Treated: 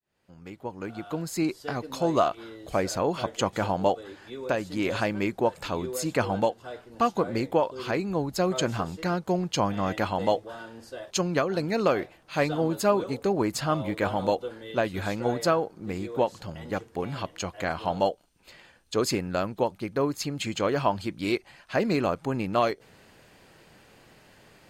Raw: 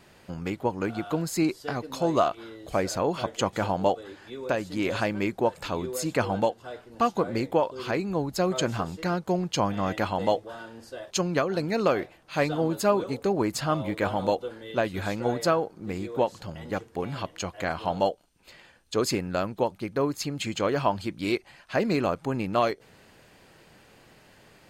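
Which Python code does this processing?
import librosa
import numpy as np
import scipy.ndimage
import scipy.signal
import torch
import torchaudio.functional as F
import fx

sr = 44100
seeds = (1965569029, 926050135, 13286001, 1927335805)

y = fx.fade_in_head(x, sr, length_s=1.82)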